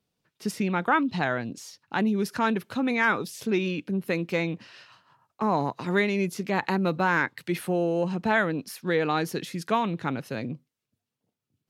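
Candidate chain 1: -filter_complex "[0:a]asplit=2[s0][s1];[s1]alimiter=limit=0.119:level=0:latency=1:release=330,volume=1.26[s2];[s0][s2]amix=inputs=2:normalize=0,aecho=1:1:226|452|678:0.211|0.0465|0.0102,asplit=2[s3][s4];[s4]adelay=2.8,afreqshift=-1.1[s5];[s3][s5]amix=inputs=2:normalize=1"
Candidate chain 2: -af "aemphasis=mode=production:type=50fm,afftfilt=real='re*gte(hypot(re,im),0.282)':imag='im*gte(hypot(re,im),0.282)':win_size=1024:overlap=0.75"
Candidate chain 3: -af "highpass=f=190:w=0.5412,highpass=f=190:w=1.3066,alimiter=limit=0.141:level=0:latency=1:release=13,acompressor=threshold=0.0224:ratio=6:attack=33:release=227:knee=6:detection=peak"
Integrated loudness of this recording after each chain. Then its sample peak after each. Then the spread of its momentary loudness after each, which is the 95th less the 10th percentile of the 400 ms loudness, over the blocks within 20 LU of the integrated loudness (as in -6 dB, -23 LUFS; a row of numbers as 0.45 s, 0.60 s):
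-25.0 LUFS, -29.5 LUFS, -35.5 LUFS; -6.5 dBFS, -12.5 dBFS, -17.0 dBFS; 8 LU, 11 LU, 5 LU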